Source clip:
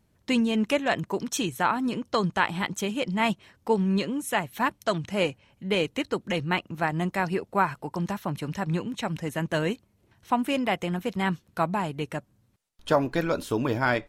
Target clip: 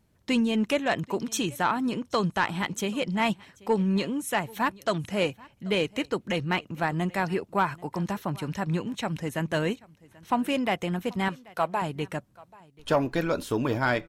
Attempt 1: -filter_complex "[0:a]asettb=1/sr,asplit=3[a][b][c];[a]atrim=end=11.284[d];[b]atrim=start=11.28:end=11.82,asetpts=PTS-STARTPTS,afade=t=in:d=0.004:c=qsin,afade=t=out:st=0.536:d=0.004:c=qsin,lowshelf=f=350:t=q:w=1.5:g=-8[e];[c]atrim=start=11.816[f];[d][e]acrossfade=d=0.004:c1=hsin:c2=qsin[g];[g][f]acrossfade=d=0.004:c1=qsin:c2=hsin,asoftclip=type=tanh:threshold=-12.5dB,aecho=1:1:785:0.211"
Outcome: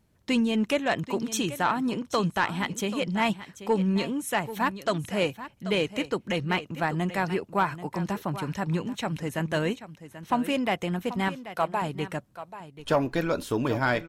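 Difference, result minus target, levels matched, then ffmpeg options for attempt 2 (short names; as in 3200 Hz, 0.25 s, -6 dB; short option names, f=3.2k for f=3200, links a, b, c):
echo-to-direct +10 dB
-filter_complex "[0:a]asettb=1/sr,asplit=3[a][b][c];[a]atrim=end=11.284[d];[b]atrim=start=11.28:end=11.82,asetpts=PTS-STARTPTS,afade=t=in:d=0.004:c=qsin,afade=t=out:st=0.536:d=0.004:c=qsin,lowshelf=f=350:t=q:w=1.5:g=-8[e];[c]atrim=start=11.816[f];[d][e]acrossfade=d=0.004:c1=hsin:c2=qsin[g];[g][f]acrossfade=d=0.004:c1=qsin:c2=hsin,asoftclip=type=tanh:threshold=-12.5dB,aecho=1:1:785:0.0668"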